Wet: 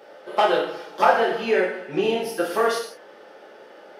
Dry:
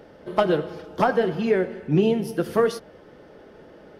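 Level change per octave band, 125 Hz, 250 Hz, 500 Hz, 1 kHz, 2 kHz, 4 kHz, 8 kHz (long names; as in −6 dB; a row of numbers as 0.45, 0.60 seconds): −14.0, −6.0, +0.5, +6.0, +6.0, +6.5, +6.0 decibels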